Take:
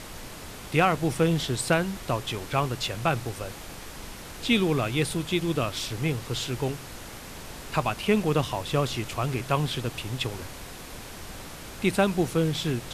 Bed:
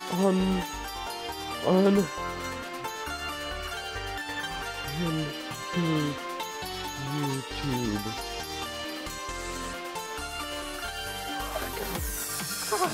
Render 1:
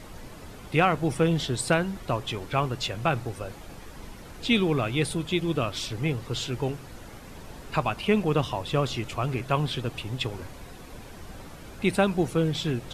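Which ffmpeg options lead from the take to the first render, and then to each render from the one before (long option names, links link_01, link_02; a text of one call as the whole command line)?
ffmpeg -i in.wav -af "afftdn=noise_reduction=9:noise_floor=-42" out.wav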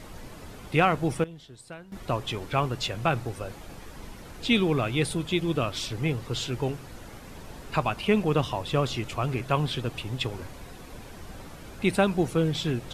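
ffmpeg -i in.wav -filter_complex "[0:a]asplit=3[link_01][link_02][link_03];[link_01]atrim=end=1.24,asetpts=PTS-STARTPTS,afade=type=out:start_time=0.84:duration=0.4:curve=log:silence=0.105925[link_04];[link_02]atrim=start=1.24:end=1.92,asetpts=PTS-STARTPTS,volume=-19.5dB[link_05];[link_03]atrim=start=1.92,asetpts=PTS-STARTPTS,afade=type=in:duration=0.4:curve=log:silence=0.105925[link_06];[link_04][link_05][link_06]concat=n=3:v=0:a=1" out.wav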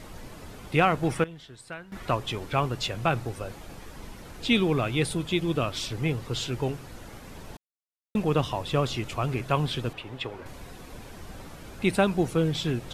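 ffmpeg -i in.wav -filter_complex "[0:a]asettb=1/sr,asplit=3[link_01][link_02][link_03];[link_01]atrim=end=1.034[link_04];[link_02]atrim=start=1.03:end=2.15,asetpts=PTS-STARTPTS,afade=type=in:duration=0.004:curve=qsin,afade=type=out:start_time=1.116:duration=0.004:curve=qsin,equalizer=frequency=1700:width=0.84:gain=7[link_05];[link_03]atrim=start=2.146[link_06];[link_04][link_05]acrossfade=duration=0.004:curve1=hsin:curve2=qsin[link_07];[link_07][link_06]acrossfade=duration=0.004:curve1=qsin:curve2=hsin,asettb=1/sr,asplit=3[link_08][link_09][link_10];[link_08]atrim=end=9.934[link_11];[link_09]atrim=start=9.93:end=10.46,asetpts=PTS-STARTPTS,afade=type=in:duration=0.004:curve=qsin,afade=type=out:start_time=0.526:duration=0.004:curve=qsin,bass=frequency=250:gain=-10,treble=frequency=4000:gain=-13[link_12];[link_10]atrim=start=10.456[link_13];[link_11][link_12]acrossfade=duration=0.004:curve1=hsin:curve2=qsin[link_14];[link_14][link_13]acrossfade=duration=0.004:curve1=qsin:curve2=hsin,asplit=3[link_15][link_16][link_17];[link_15]atrim=end=7.57,asetpts=PTS-STARTPTS,afade=type=out:start_time=7.566:duration=0.004:curve=hsin[link_18];[link_16]atrim=start=7.57:end=8.15,asetpts=PTS-STARTPTS,volume=0[link_19];[link_17]atrim=start=8.15,asetpts=PTS-STARTPTS,afade=type=in:duration=0.004:curve=hsin[link_20];[link_18][link_19][link_20]concat=n=3:v=0:a=1" out.wav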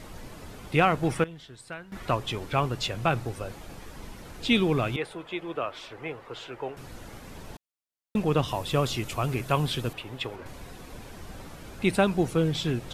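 ffmpeg -i in.wav -filter_complex "[0:a]asettb=1/sr,asplit=3[link_01][link_02][link_03];[link_01]atrim=end=4.964[link_04];[link_02]atrim=start=4.96:end=6.77,asetpts=PTS-STARTPTS,afade=type=in:duration=0.004:curve=qsin,afade=type=out:start_time=1.806:duration=0.004:curve=qsin,acrossover=split=400 2500:gain=0.112 1 0.141[link_05][link_06][link_07];[link_05][link_06][link_07]amix=inputs=3:normalize=0[link_08];[link_03]atrim=start=6.766[link_09];[link_04][link_08]acrossfade=duration=0.004:curve1=hsin:curve2=qsin[link_10];[link_10][link_09]acrossfade=duration=0.004:curve1=qsin:curve2=hsin,asettb=1/sr,asplit=3[link_11][link_12][link_13];[link_11]atrim=end=8.484[link_14];[link_12]atrim=start=8.48:end=10.36,asetpts=PTS-STARTPTS,afade=type=in:duration=0.004:curve=qsin,afade=type=out:start_time=1.876:duration=0.004:curve=qsin,highshelf=frequency=8900:gain=11.5[link_15];[link_13]atrim=start=10.356[link_16];[link_14][link_15]acrossfade=duration=0.004:curve1=hsin:curve2=qsin[link_17];[link_17][link_16]acrossfade=duration=0.004:curve1=qsin:curve2=hsin" out.wav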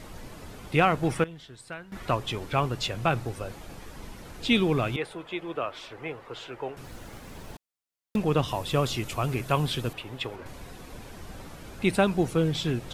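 ffmpeg -i in.wav -filter_complex "[0:a]asettb=1/sr,asplit=3[link_01][link_02][link_03];[link_01]atrim=end=6.844[link_04];[link_02]atrim=start=6.84:end=8.16,asetpts=PTS-STARTPTS,afade=type=in:duration=0.004:curve=qsin,afade=type=out:start_time=1.316:duration=0.004:curve=qsin,acrusher=bits=5:mode=log:mix=0:aa=0.000001[link_05];[link_03]atrim=start=8.156[link_06];[link_04][link_05]acrossfade=duration=0.004:curve1=hsin:curve2=qsin[link_07];[link_07][link_06]acrossfade=duration=0.004:curve1=qsin:curve2=hsin" out.wav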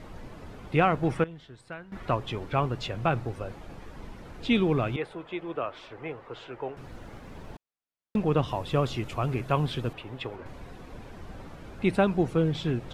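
ffmpeg -i in.wav -af "lowpass=frequency=2000:poles=1" out.wav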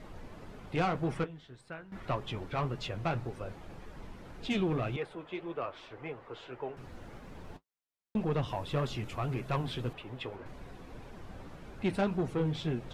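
ffmpeg -i in.wav -af "asoftclip=type=tanh:threshold=-20dB,flanger=delay=4.7:depth=7.1:regen=-47:speed=1.8:shape=sinusoidal" out.wav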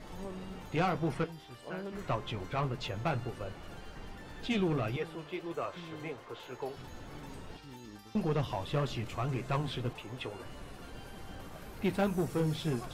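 ffmpeg -i in.wav -i bed.wav -filter_complex "[1:a]volume=-20dB[link_01];[0:a][link_01]amix=inputs=2:normalize=0" out.wav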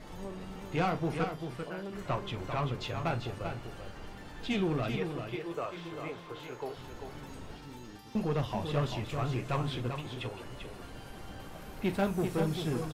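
ffmpeg -i in.wav -filter_complex "[0:a]asplit=2[link_01][link_02];[link_02]adelay=41,volume=-13.5dB[link_03];[link_01][link_03]amix=inputs=2:normalize=0,aecho=1:1:392:0.447" out.wav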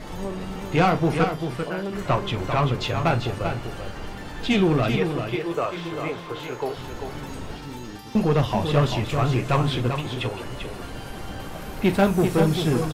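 ffmpeg -i in.wav -af "volume=11dB" out.wav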